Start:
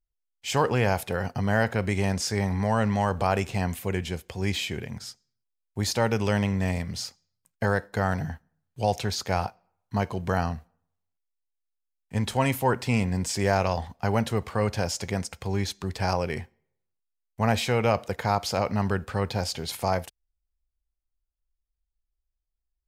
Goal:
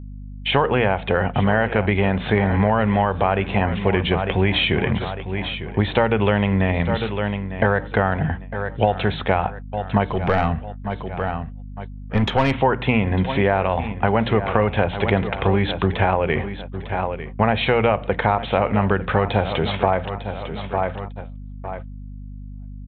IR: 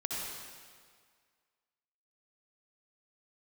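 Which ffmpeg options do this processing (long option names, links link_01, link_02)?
-filter_complex "[0:a]lowshelf=frequency=220:gain=-5,bandreject=frequency=60:width_type=h:width=6,bandreject=frequency=120:width_type=h:width=6,bandreject=frequency=180:width_type=h:width=6,bandreject=frequency=240:width_type=h:width=6,bandreject=frequency=300:width_type=h:width=6,aecho=1:1:901|1802|2703:0.168|0.0554|0.0183,dynaudnorm=framelen=250:gausssize=3:maxgain=16dB,aresample=8000,aresample=44100,asplit=3[link_01][link_02][link_03];[link_01]afade=type=out:start_time=10.05:duration=0.02[link_04];[link_02]aeval=exprs='(tanh(3.55*val(0)+0.35)-tanh(0.35))/3.55':channel_layout=same,afade=type=in:start_time=10.05:duration=0.02,afade=type=out:start_time=12.51:duration=0.02[link_05];[link_03]afade=type=in:start_time=12.51:duration=0.02[link_06];[link_04][link_05][link_06]amix=inputs=3:normalize=0,acompressor=threshold=-18dB:ratio=8,highshelf=frequency=2900:gain=-3.5,agate=range=-41dB:threshold=-38dB:ratio=16:detection=peak,aeval=exprs='val(0)+0.0126*(sin(2*PI*50*n/s)+sin(2*PI*2*50*n/s)/2+sin(2*PI*3*50*n/s)/3+sin(2*PI*4*50*n/s)/4+sin(2*PI*5*50*n/s)/5)':channel_layout=same,volume=4.5dB"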